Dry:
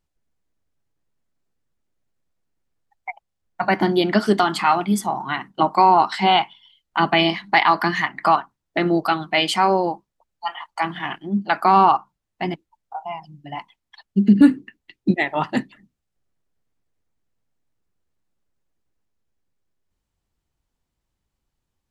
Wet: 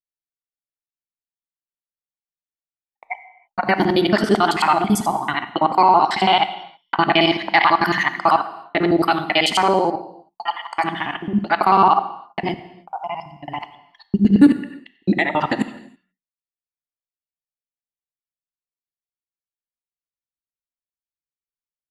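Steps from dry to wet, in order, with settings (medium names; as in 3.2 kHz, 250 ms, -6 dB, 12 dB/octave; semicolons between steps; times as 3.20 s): time reversed locally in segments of 55 ms; bass shelf 91 Hz -7.5 dB; in parallel at -2.5 dB: peak limiter -12 dBFS, peak gain reduction 8.5 dB; on the sum: expander -36 dBFS; gated-style reverb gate 350 ms falling, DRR 11 dB; trim -1.5 dB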